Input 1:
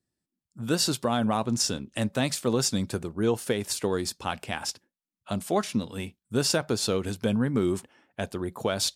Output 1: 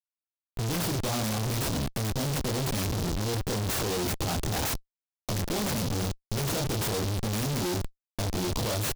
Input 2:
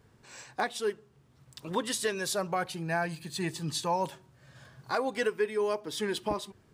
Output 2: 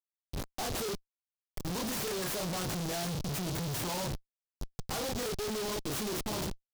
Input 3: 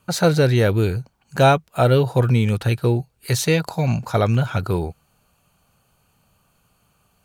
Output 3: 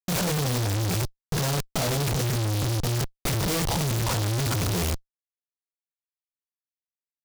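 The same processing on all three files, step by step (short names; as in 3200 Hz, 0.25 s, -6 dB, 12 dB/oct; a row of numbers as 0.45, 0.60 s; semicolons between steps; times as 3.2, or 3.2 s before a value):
rattling part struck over -26 dBFS, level -7 dBFS; bell 110 Hz +9.5 dB 1 oct; compressor 6:1, threshold -18 dBFS; treble ducked by the level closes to 2500 Hz, closed at -21.5 dBFS; doubler 28 ms -3 dB; Schmitt trigger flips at -38 dBFS; noise-modulated delay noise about 4200 Hz, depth 0.12 ms; gain -3 dB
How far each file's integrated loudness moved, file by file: -1.5, -3.0, -6.5 LU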